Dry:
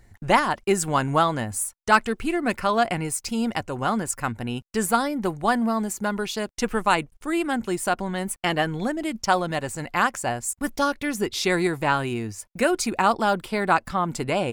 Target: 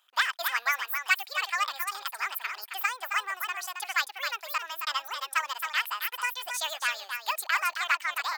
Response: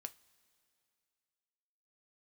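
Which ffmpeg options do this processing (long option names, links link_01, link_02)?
-filter_complex "[0:a]highpass=frequency=540:width=0.5412,highpass=frequency=540:width=1.3066,asplit=2[link_01][link_02];[link_02]aecho=0:1:466:0.473[link_03];[link_01][link_03]amix=inputs=2:normalize=0,asetrate=76440,aresample=44100,volume=-5.5dB"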